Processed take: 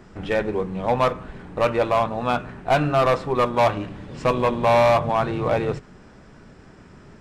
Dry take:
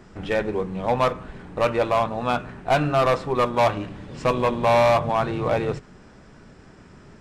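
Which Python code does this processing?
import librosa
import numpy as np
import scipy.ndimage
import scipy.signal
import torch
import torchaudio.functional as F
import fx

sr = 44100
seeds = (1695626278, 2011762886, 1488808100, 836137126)

y = fx.peak_eq(x, sr, hz=7400.0, db=-2.0, octaves=2.1)
y = F.gain(torch.from_numpy(y), 1.0).numpy()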